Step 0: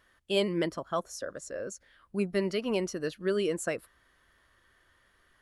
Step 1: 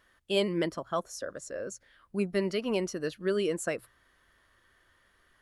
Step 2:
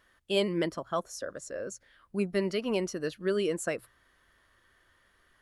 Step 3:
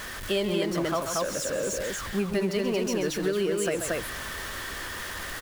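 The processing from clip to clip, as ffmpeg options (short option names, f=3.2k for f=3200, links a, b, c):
-af "bandreject=f=60:t=h:w=6,bandreject=f=120:t=h:w=6"
-af anull
-af "aeval=exprs='val(0)+0.5*0.0158*sgn(val(0))':c=same,aecho=1:1:134.1|230.3:0.316|0.708,acompressor=threshold=-27dB:ratio=6,volume=4dB"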